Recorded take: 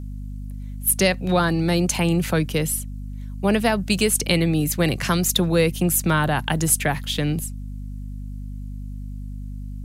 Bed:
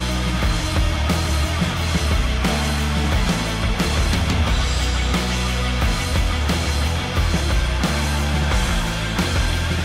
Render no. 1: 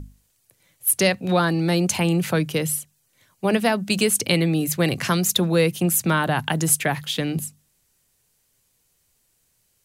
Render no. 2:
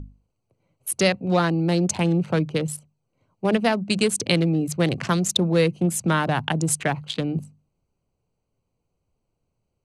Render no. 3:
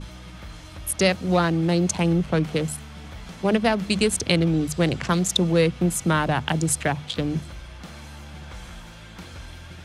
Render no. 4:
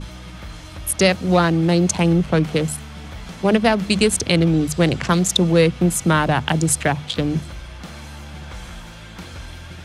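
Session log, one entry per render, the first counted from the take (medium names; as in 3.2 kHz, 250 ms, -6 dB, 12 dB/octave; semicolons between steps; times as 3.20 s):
hum notches 50/100/150/200/250 Hz
local Wiener filter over 25 samples; low-pass 9.2 kHz 24 dB/octave
add bed -20 dB
trim +4.5 dB; peak limiter -3 dBFS, peak gain reduction 3 dB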